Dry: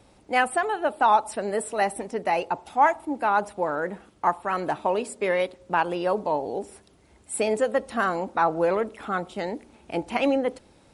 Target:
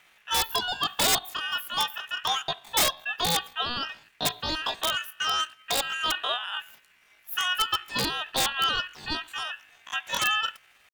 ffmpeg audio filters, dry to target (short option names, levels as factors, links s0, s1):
-af "aeval=exprs='val(0)*sin(2*PI*1300*n/s)':c=same,asetrate=74167,aresample=44100,atempo=0.594604,aeval=exprs='(mod(5.31*val(0)+1,2)-1)/5.31':c=same"